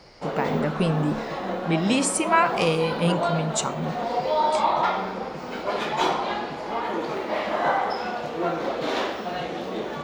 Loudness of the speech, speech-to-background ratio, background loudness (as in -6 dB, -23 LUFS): -25.0 LUFS, 2.0 dB, -27.0 LUFS